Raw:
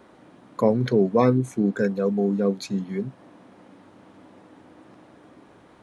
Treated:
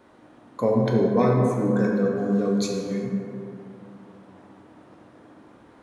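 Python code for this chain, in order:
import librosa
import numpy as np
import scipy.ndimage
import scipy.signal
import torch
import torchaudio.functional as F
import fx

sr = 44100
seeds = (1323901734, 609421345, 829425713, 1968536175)

y = fx.peak_eq(x, sr, hz=6400.0, db=8.5, octaves=1.8, at=(2.16, 3.03))
y = fx.rev_plate(y, sr, seeds[0], rt60_s=2.8, hf_ratio=0.35, predelay_ms=0, drr_db=-1.5)
y = F.gain(torch.from_numpy(y), -4.0).numpy()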